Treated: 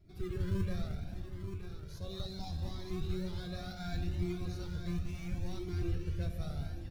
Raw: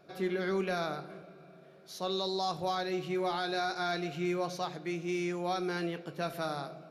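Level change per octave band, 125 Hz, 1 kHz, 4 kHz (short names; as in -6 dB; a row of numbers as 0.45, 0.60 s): +6.5, -17.5, -10.0 dB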